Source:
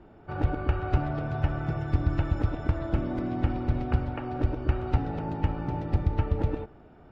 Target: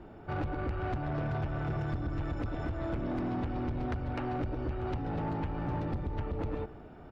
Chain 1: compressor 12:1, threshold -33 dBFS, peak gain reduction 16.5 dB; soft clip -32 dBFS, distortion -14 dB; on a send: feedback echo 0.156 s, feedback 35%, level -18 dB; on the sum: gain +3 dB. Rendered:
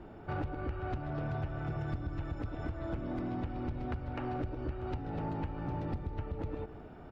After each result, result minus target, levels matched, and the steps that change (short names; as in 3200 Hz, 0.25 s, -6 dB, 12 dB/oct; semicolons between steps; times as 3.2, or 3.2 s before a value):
compressor: peak gain reduction +6.5 dB; echo-to-direct +7.5 dB
change: compressor 12:1, threshold -26 dBFS, peak gain reduction 10 dB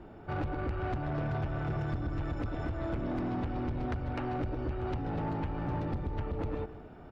echo-to-direct +7.5 dB
change: feedback echo 0.156 s, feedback 35%, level -25.5 dB